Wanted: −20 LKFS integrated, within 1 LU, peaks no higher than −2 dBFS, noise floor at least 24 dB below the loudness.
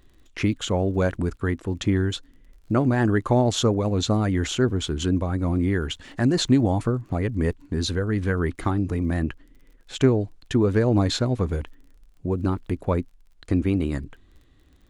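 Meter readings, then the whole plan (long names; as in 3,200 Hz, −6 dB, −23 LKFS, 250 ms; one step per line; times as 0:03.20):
crackle rate 39 per second; integrated loudness −24.0 LKFS; sample peak −6.5 dBFS; target loudness −20.0 LKFS
→ click removal
level +4 dB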